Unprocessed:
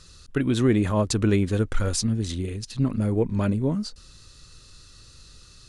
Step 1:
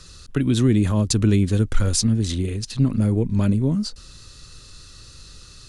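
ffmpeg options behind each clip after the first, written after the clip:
ffmpeg -i in.wav -filter_complex "[0:a]acrossover=split=290|3000[link_01][link_02][link_03];[link_02]acompressor=threshold=-36dB:ratio=4[link_04];[link_01][link_04][link_03]amix=inputs=3:normalize=0,volume=5.5dB" out.wav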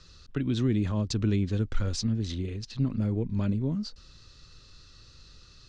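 ffmpeg -i in.wav -af "lowpass=frequency=5800:width=0.5412,lowpass=frequency=5800:width=1.3066,volume=-8.5dB" out.wav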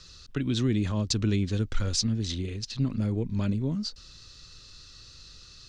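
ffmpeg -i in.wav -af "highshelf=frequency=2800:gain=9" out.wav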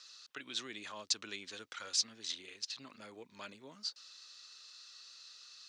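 ffmpeg -i in.wav -af "highpass=900,volume=-4dB" out.wav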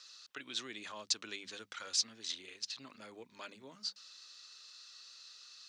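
ffmpeg -i in.wav -af "bandreject=frequency=50:width_type=h:width=6,bandreject=frequency=100:width_type=h:width=6,bandreject=frequency=150:width_type=h:width=6,bandreject=frequency=200:width_type=h:width=6" out.wav

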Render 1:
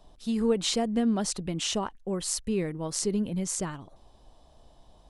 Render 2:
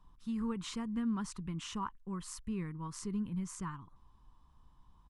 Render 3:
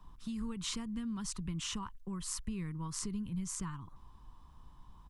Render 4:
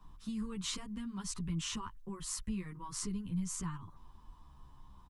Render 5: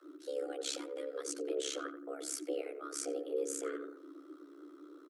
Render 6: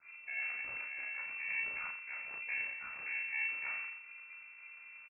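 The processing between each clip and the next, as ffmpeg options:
ffmpeg -i in.wav -af "firequalizer=gain_entry='entry(160,0);entry(640,-24);entry(1000,5);entry(1600,-3);entry(4100,-13);entry(6000,-11)':delay=0.05:min_phase=1,volume=-5dB" out.wav
ffmpeg -i in.wav -filter_complex "[0:a]acrossover=split=130|3000[link_01][link_02][link_03];[link_02]acompressor=threshold=-49dB:ratio=6[link_04];[link_01][link_04][link_03]amix=inputs=3:normalize=0,volume=7dB" out.wav
ffmpeg -i in.wav -filter_complex "[0:a]asplit=2[link_01][link_02];[link_02]adelay=10.7,afreqshift=-0.46[link_03];[link_01][link_03]amix=inputs=2:normalize=1,volume=3dB" out.wav
ffmpeg -i in.wav -filter_complex "[0:a]tremolo=f=68:d=0.947,afreqshift=280,asplit=2[link_01][link_02];[link_02]adelay=87,lowpass=frequency=1300:poles=1,volume=-8.5dB,asplit=2[link_03][link_04];[link_04]adelay=87,lowpass=frequency=1300:poles=1,volume=0.42,asplit=2[link_05][link_06];[link_06]adelay=87,lowpass=frequency=1300:poles=1,volume=0.42,asplit=2[link_07][link_08];[link_08]adelay=87,lowpass=frequency=1300:poles=1,volume=0.42,asplit=2[link_09][link_10];[link_10]adelay=87,lowpass=frequency=1300:poles=1,volume=0.42[link_11];[link_01][link_03][link_05][link_07][link_09][link_11]amix=inputs=6:normalize=0,volume=3.5dB" out.wav
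ffmpeg -i in.wav -filter_complex "[0:a]aeval=exprs='max(val(0),0)':channel_layout=same,asplit=2[link_01][link_02];[link_02]adelay=36,volume=-3.5dB[link_03];[link_01][link_03]amix=inputs=2:normalize=0,lowpass=frequency=2300:width_type=q:width=0.5098,lowpass=frequency=2300:width_type=q:width=0.6013,lowpass=frequency=2300:width_type=q:width=0.9,lowpass=frequency=2300:width_type=q:width=2.563,afreqshift=-2700" out.wav

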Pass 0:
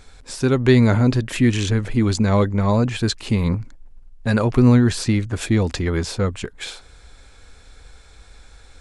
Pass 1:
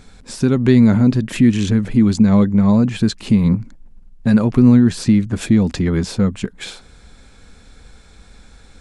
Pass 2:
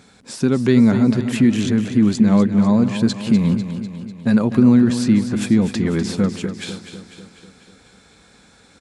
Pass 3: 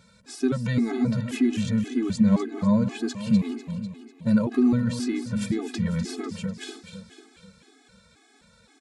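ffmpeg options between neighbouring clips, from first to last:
ffmpeg -i in.wav -filter_complex "[0:a]equalizer=frequency=200:width=1.5:gain=13,asplit=2[link_01][link_02];[link_02]acompressor=threshold=-16dB:ratio=6,volume=2dB[link_03];[link_01][link_03]amix=inputs=2:normalize=0,volume=-6.5dB" out.wav
ffmpeg -i in.wav -af "highpass=140,aecho=1:1:248|496|744|992|1240|1488|1736:0.316|0.18|0.103|0.0586|0.0334|0.019|0.0108,volume=-1dB" out.wav
ffmpeg -i in.wav -af "afftfilt=real='re*gt(sin(2*PI*1.9*pts/sr)*(1-2*mod(floor(b*sr/1024/220),2)),0)':imag='im*gt(sin(2*PI*1.9*pts/sr)*(1-2*mod(floor(b*sr/1024/220),2)),0)':win_size=1024:overlap=0.75,volume=-4dB" out.wav

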